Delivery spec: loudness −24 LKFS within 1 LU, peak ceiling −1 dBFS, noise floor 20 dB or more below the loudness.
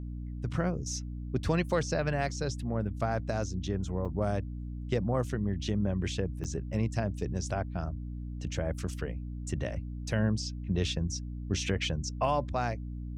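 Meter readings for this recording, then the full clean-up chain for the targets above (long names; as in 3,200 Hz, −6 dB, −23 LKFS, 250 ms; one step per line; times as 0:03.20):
number of dropouts 2; longest dropout 6.2 ms; mains hum 60 Hz; hum harmonics up to 300 Hz; level of the hum −36 dBFS; integrated loudness −33.0 LKFS; sample peak −15.5 dBFS; target loudness −24.0 LKFS
→ repair the gap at 0:04.05/0:06.44, 6.2 ms
mains-hum notches 60/120/180/240/300 Hz
level +9 dB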